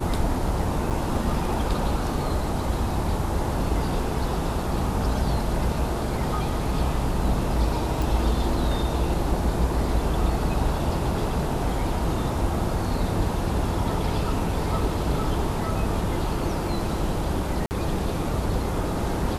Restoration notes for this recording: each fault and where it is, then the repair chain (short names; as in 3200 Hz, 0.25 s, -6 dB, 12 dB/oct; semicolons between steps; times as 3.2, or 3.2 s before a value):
0.9–0.91 gap 7.9 ms
8.02 pop
17.66–17.71 gap 49 ms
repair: de-click; interpolate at 0.9, 7.9 ms; interpolate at 17.66, 49 ms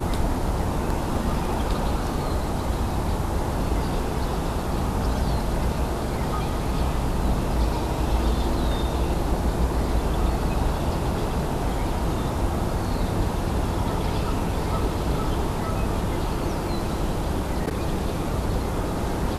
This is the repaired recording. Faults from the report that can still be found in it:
none